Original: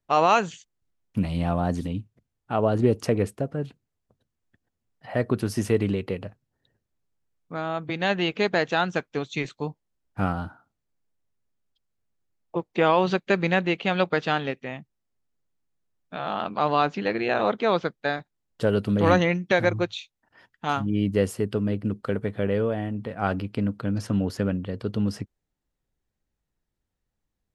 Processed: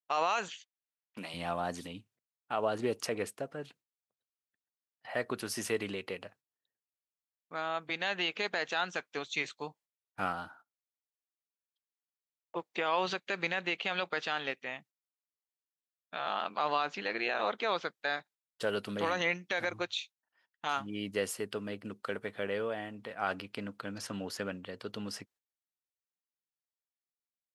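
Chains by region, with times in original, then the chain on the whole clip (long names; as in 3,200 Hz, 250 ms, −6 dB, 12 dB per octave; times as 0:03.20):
0:00.48–0:01.34: high-pass filter 250 Hz + low-pass that shuts in the quiet parts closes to 2,600 Hz, open at −29.5 dBFS + one half of a high-frequency compander encoder only
whole clip: noise gate −49 dBFS, range −16 dB; high-pass filter 1,300 Hz 6 dB per octave; brickwall limiter −19.5 dBFS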